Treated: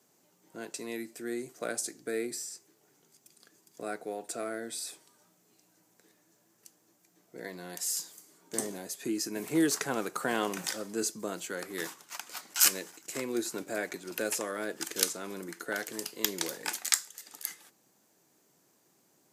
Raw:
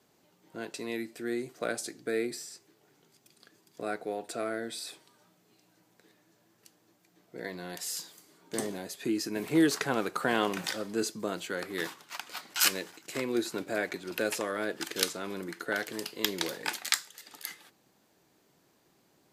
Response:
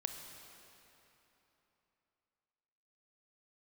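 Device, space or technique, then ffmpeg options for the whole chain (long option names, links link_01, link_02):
budget condenser microphone: -af "highpass=120,highshelf=frequency=5100:width_type=q:width=1.5:gain=6,volume=-2.5dB"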